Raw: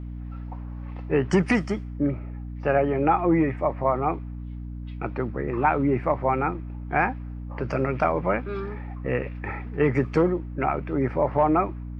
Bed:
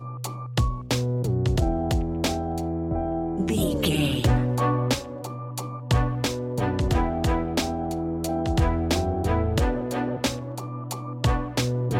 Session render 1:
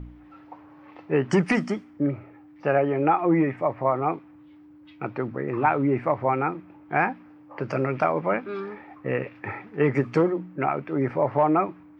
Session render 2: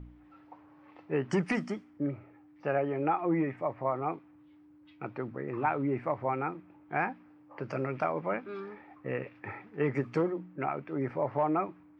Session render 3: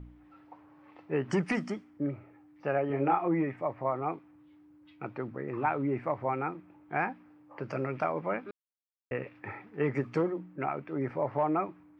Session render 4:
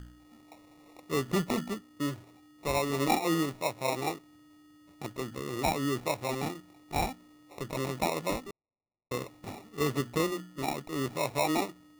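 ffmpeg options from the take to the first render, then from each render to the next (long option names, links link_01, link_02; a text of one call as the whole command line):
ffmpeg -i in.wav -af "bandreject=frequency=60:width_type=h:width=4,bandreject=frequency=120:width_type=h:width=4,bandreject=frequency=180:width_type=h:width=4,bandreject=frequency=240:width_type=h:width=4" out.wav
ffmpeg -i in.wav -af "volume=-8dB" out.wav
ffmpeg -i in.wav -filter_complex "[0:a]asettb=1/sr,asplit=3[link_01][link_02][link_03];[link_01]atrim=end=1.214[link_04];[link_02]atrim=start=1.21:end=1.77,asetpts=PTS-STARTPTS,afade=type=in:duration=0.004:curve=qsin,afade=type=out:start_time=0.556:duration=0.004:curve=qsin,acompressor=mode=upward:threshold=-35dB:ratio=2.5:attack=3.2:release=140:knee=2.83:detection=peak[link_05];[link_03]atrim=start=1.766[link_06];[link_04][link_05]acrossfade=duration=0.004:curve1=hsin:curve2=qsin[link_07];[link_07][link_06]acrossfade=duration=0.004:curve1=qsin:curve2=hsin,asettb=1/sr,asplit=3[link_08][link_09][link_10];[link_08]atrim=end=2.874[link_11];[link_09]atrim=start=2.87:end=3.28,asetpts=PTS-STARTPTS,afade=type=in:duration=0.004:curve=qsin,afade=type=out:start_time=0.406:duration=0.004:curve=qsin,asplit=2[link_12][link_13];[link_13]adelay=29,volume=-3dB[link_14];[link_12][link_14]amix=inputs=2:normalize=0,atrim=end_sample=18081[link_15];[link_10]atrim=start=3.276[link_16];[link_11][link_15]acrossfade=duration=0.004:curve1=hsin:curve2=qsin[link_17];[link_17][link_16]acrossfade=duration=0.004:curve1=qsin:curve2=hsin,asplit=3[link_18][link_19][link_20];[link_18]atrim=end=8.51,asetpts=PTS-STARTPTS,afade=type=out:start_time=8.506:duration=0.004:curve=hsin[link_21];[link_19]atrim=start=8.51:end=9.11,asetpts=PTS-STARTPTS,volume=0[link_22];[link_20]atrim=start=9.11,asetpts=PTS-STARTPTS,afade=type=in:duration=0.004:curve=hsin[link_23];[link_21][link_22][link_23]concat=n=3:v=0:a=1" out.wav
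ffmpeg -i in.wav -af "acrusher=samples=28:mix=1:aa=0.000001" out.wav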